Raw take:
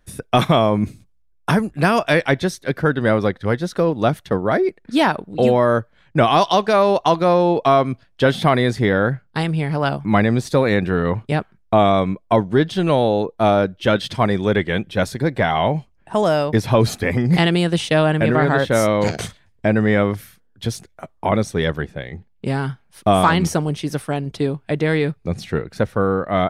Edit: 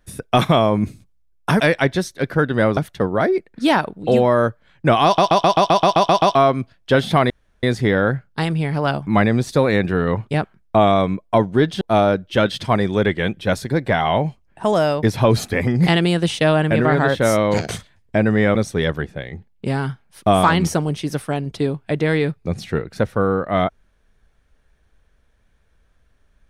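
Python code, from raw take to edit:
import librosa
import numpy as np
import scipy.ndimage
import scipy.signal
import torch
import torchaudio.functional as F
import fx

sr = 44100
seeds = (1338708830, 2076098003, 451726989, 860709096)

y = fx.edit(x, sr, fx.cut(start_s=1.6, length_s=0.47),
    fx.cut(start_s=3.24, length_s=0.84),
    fx.stutter_over(start_s=6.36, slice_s=0.13, count=10),
    fx.insert_room_tone(at_s=8.61, length_s=0.33),
    fx.cut(start_s=12.79, length_s=0.52),
    fx.cut(start_s=20.05, length_s=1.3), tone=tone)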